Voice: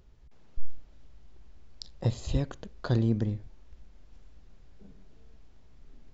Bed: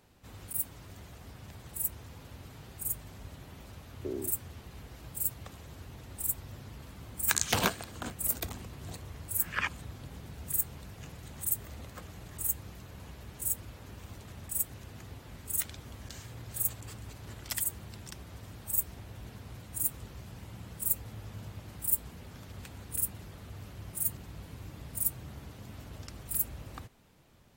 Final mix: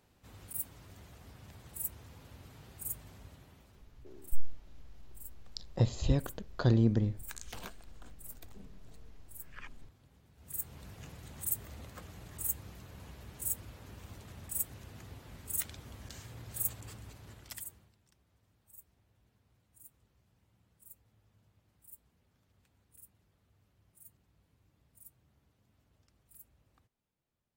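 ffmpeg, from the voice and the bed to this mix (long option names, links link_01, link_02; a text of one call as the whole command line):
ffmpeg -i stem1.wav -i stem2.wav -filter_complex "[0:a]adelay=3750,volume=0dB[link_01];[1:a]volume=10.5dB,afade=type=out:start_time=3.09:duration=0.8:silence=0.211349,afade=type=in:start_time=10.35:duration=0.52:silence=0.16788,afade=type=out:start_time=16.85:duration=1.1:silence=0.0749894[link_02];[link_01][link_02]amix=inputs=2:normalize=0" out.wav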